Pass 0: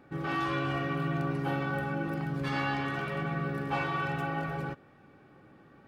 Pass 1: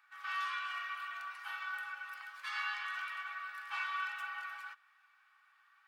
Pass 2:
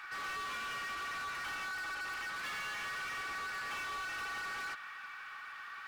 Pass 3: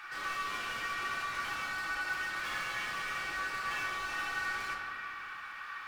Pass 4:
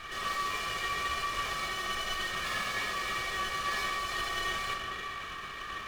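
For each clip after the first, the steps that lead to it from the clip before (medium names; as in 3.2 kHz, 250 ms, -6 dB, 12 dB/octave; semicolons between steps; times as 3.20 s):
steep high-pass 1.1 kHz 36 dB/octave; trim -2.5 dB
compression, threshold -45 dBFS, peak gain reduction 11 dB; overdrive pedal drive 29 dB, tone 5.3 kHz, clips at -35.5 dBFS; trim +1 dB
reverberation RT60 2.3 s, pre-delay 6 ms, DRR -1.5 dB
comb filter that takes the minimum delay 1.7 ms; trim +4.5 dB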